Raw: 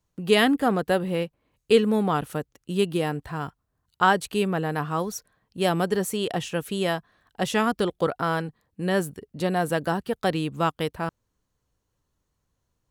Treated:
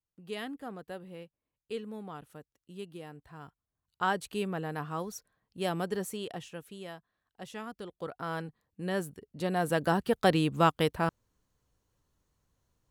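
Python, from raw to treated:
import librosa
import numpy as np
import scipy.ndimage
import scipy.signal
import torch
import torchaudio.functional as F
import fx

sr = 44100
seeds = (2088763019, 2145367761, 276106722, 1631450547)

y = fx.gain(x, sr, db=fx.line((3.1, -19.5), (4.18, -9.0), (6.04, -9.0), (6.83, -18.5), (7.84, -18.5), (8.42, -8.5), (9.29, -8.5), (10.05, 0.0)))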